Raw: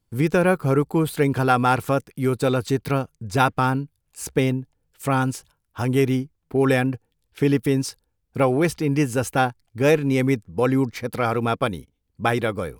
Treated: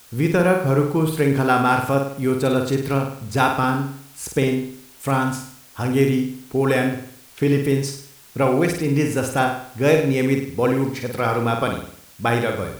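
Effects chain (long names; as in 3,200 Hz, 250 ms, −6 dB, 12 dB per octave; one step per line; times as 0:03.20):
flutter between parallel walls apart 8.7 metres, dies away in 0.59 s
bit-depth reduction 8 bits, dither triangular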